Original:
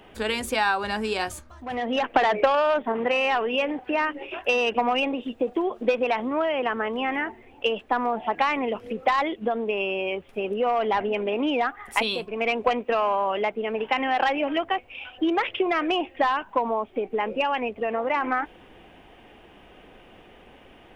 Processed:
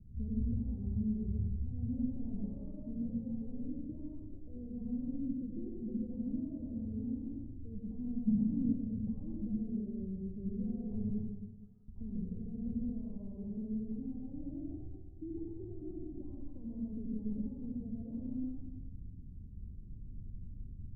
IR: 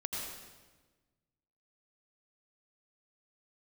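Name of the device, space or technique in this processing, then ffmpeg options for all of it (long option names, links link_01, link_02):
club heard from the street: -filter_complex "[0:a]asettb=1/sr,asplit=3[link_01][link_02][link_03];[link_01]atrim=end=11.094[link_04];[link_02]atrim=start=11.09:end=11.88,asetpts=PTS-STARTPTS,afade=type=in:duration=0.004:curve=qsin,afade=type=out:start_time=0.786:duration=0.004:curve=qsin,highpass=frequency=1400:width=0.5412,highpass=frequency=1400:width=1.3066[link_05];[link_03]atrim=start=11.876[link_06];[link_04][link_05]acrossfade=duration=0.004:curve1=hsin:curve2=qsin[link_07];[link_07][link_06]acrossfade=duration=0.004:curve1=qsin:curve2=hsin,alimiter=limit=-17dB:level=0:latency=1:release=77,lowpass=frequency=150:width=0.5412,lowpass=frequency=150:width=1.3066[link_08];[1:a]atrim=start_sample=2205[link_09];[link_08][link_09]afir=irnorm=-1:irlink=0,asplit=3[link_10][link_11][link_12];[link_10]afade=type=out:start_time=8.27:duration=0.02[link_13];[link_11]equalizer=frequency=190:width_type=o:width=1.3:gain=13,afade=type=in:start_time=8.27:duration=0.02,afade=type=out:start_time=8.71:duration=0.02[link_14];[link_12]afade=type=in:start_time=8.71:duration=0.02[link_15];[link_13][link_14][link_15]amix=inputs=3:normalize=0,volume=9dB"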